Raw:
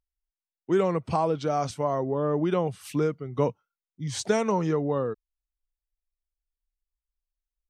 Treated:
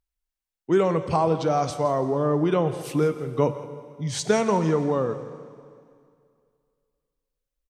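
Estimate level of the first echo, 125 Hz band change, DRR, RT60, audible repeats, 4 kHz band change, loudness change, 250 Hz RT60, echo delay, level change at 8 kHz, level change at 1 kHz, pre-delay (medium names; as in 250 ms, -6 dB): -16.0 dB, +3.5 dB, 9.5 dB, 2.3 s, 1, +3.5 dB, +3.5 dB, 2.3 s, 168 ms, +3.5 dB, +3.5 dB, 6 ms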